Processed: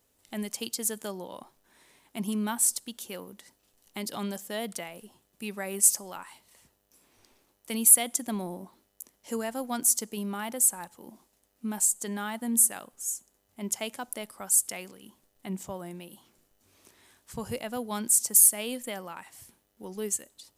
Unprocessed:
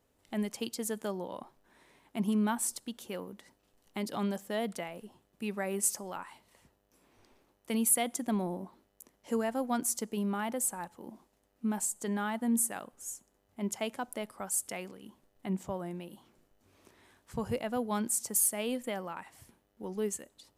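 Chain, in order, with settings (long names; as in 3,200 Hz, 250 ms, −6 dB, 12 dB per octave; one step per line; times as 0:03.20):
high-shelf EQ 3,200 Hz +12 dB
level −1.5 dB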